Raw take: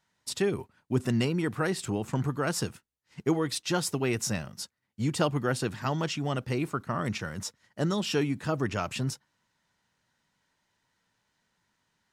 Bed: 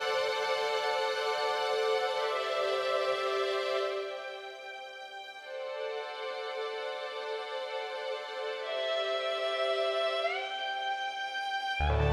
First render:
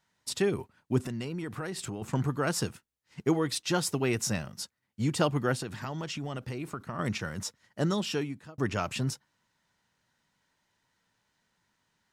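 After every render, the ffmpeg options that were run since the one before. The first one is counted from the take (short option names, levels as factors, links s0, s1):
-filter_complex "[0:a]asettb=1/sr,asplit=3[s0][s1][s2];[s0]atrim=end=1.024[s3];[s1]atrim=start=1.02:end=2.02,asetpts=PTS-STARTPTS,afade=t=in:d=0.004:c=qsin,afade=t=out:st=0.996:d=0.004:c=qsin,acompressor=threshold=0.0251:ratio=6:attack=3.2:release=140:knee=1:detection=peak[s4];[s2]atrim=start=2.016[s5];[s3][s4]acrossfade=d=0.004:c1=hsin:c2=qsin[s6];[s6][s5]acrossfade=d=0.004:c1=qsin:c2=hsin,asplit=3[s7][s8][s9];[s7]afade=t=out:st=5.55:d=0.02[s10];[s8]acompressor=threshold=0.0251:ratio=6:attack=3.2:release=140:knee=1:detection=peak,afade=t=in:st=5.55:d=0.02,afade=t=out:st=6.98:d=0.02[s11];[s9]afade=t=in:st=6.98:d=0.02[s12];[s10][s11][s12]amix=inputs=3:normalize=0,asplit=2[s13][s14];[s13]atrim=end=8.58,asetpts=PTS-STARTPTS,afade=t=out:st=7.93:d=0.65[s15];[s14]atrim=start=8.58,asetpts=PTS-STARTPTS,afade=t=in:d=0.004:c=hsin[s16];[s15][s16]concat=n=2:v=0:a=1"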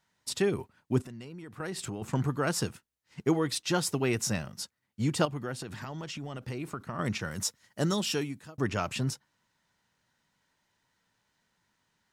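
-filter_complex "[0:a]asettb=1/sr,asplit=3[s0][s1][s2];[s0]atrim=end=5.254[s3];[s1]atrim=start=5.25:end=6.48,asetpts=PTS-STARTPTS,afade=t=in:d=0.004:c=qsin,afade=t=out:st=1.226:d=0.004:c=qsin,acompressor=threshold=0.0141:ratio=2:attack=3.2:release=140:knee=1:detection=peak[s4];[s2]atrim=start=6.476[s5];[s3][s4]acrossfade=d=0.004:c1=hsin:c2=qsin[s6];[s6][s5]acrossfade=d=0.004:c1=qsin:c2=hsin,asettb=1/sr,asplit=3[s7][s8][s9];[s7]atrim=end=7.314[s10];[s8]atrim=start=7.31:end=8.57,asetpts=PTS-STARTPTS,afade=t=in:d=0.004:c=qsin,afade=t=out:st=1.256:d=0.004:c=qsin,aemphasis=mode=production:type=cd[s11];[s9]atrim=start=8.566[s12];[s10][s11]acrossfade=d=0.004:c1=hsin:c2=qsin[s13];[s13][s12]acrossfade=d=0.004:c1=qsin:c2=hsin,asplit=3[s14][s15][s16];[s14]atrim=end=1.022[s17];[s15]atrim=start=1.018:end=1.602,asetpts=PTS-STARTPTS,volume=0.376[s18];[s16]atrim=start=1.598[s19];[s17][s18]acrossfade=d=0.004:c1=hsin:c2=hsin[s20];[s20][s19]acrossfade=d=0.004:c1=hsin:c2=hsin"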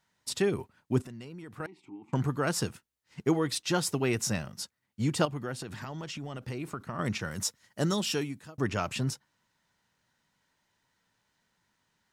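-filter_complex "[0:a]asettb=1/sr,asplit=3[s0][s1][s2];[s0]atrim=end=1.664[s3];[s1]atrim=start=1.66:end=2.13,asetpts=PTS-STARTPTS,afade=t=in:d=0.004:c=qsin,afade=t=out:st=0.466:d=0.004:c=qsin,asplit=3[s4][s5][s6];[s4]bandpass=f=300:t=q:w=8,volume=1[s7];[s5]bandpass=f=870:t=q:w=8,volume=0.501[s8];[s6]bandpass=f=2240:t=q:w=8,volume=0.355[s9];[s7][s8][s9]amix=inputs=3:normalize=0[s10];[s2]atrim=start=2.126[s11];[s3][s10]acrossfade=d=0.004:c1=hsin:c2=qsin[s12];[s12][s11]acrossfade=d=0.004:c1=qsin:c2=hsin"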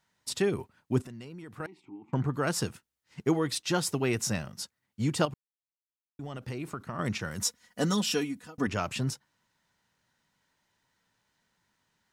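-filter_complex "[0:a]asettb=1/sr,asplit=3[s0][s1][s2];[s0]atrim=end=1.834[s3];[s1]atrim=start=1.83:end=2.34,asetpts=PTS-STARTPTS,afade=t=in:d=0.004:c=qsin,afade=t=out:st=0.506:d=0.004:c=qsin,lowpass=f=2100:p=1[s4];[s2]atrim=start=2.336[s5];[s3][s4]acrossfade=d=0.004:c1=hsin:c2=qsin[s6];[s6][s5]acrossfade=d=0.004:c1=qsin:c2=hsin,asettb=1/sr,asplit=3[s7][s8][s9];[s7]atrim=end=7.414[s10];[s8]atrim=start=7.41:end=8.67,asetpts=PTS-STARTPTS,afade=t=in:d=0.004:c=qsin,afade=t=out:st=1.256:d=0.004:c=qsin,aecho=1:1:4.1:0.73,atrim=end_sample=55566[s11];[s9]atrim=start=8.666[s12];[s10][s11]acrossfade=d=0.004:c1=hsin:c2=qsin[s13];[s13][s12]acrossfade=d=0.004:c1=qsin:c2=hsin,asplit=3[s14][s15][s16];[s14]atrim=end=5.34,asetpts=PTS-STARTPTS,afade=t=out:st=5.336:d=0.004:c=hsin[s17];[s15]atrim=start=5.34:end=6.19,asetpts=PTS-STARTPTS,volume=0[s18];[s16]atrim=start=6.19,asetpts=PTS-STARTPTS,afade=t=in:d=0.004:c=hsin[s19];[s17][s18][s19]concat=n=3:v=0:a=1"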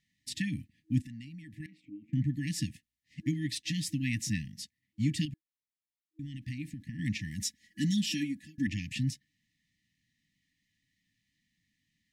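-af "afftfilt=real='re*(1-between(b*sr/4096,320,1700))':imag='im*(1-between(b*sr/4096,320,1700))':win_size=4096:overlap=0.75,highshelf=f=4900:g=-8"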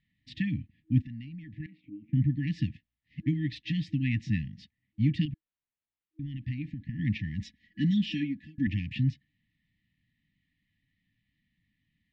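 -af "lowpass=f=3500:w=0.5412,lowpass=f=3500:w=1.3066,lowshelf=f=160:g=8.5"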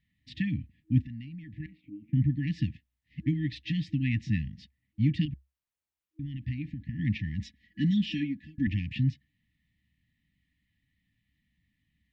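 -af "equalizer=f=67:t=o:w=0.35:g=10.5"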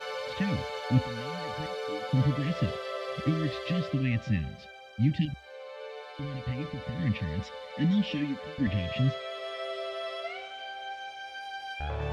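-filter_complex "[1:a]volume=0.531[s0];[0:a][s0]amix=inputs=2:normalize=0"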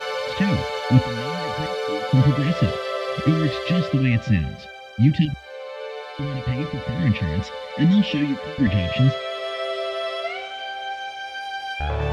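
-af "volume=2.82"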